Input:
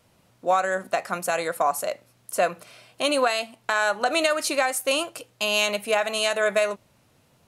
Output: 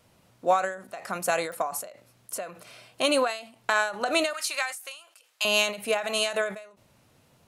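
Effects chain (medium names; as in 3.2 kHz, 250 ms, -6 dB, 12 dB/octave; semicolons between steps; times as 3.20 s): 4.33–5.45 s: high-pass 1.2 kHz 12 dB/octave; clicks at 1.52 s, -22 dBFS; endings held to a fixed fall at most 110 dB/s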